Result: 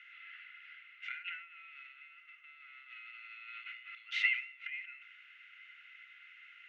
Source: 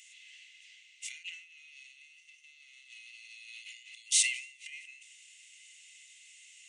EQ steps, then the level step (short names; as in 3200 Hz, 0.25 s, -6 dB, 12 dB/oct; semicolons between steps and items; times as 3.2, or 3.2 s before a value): synth low-pass 1400 Hz, resonance Q 15; air absorption 260 m; +11.5 dB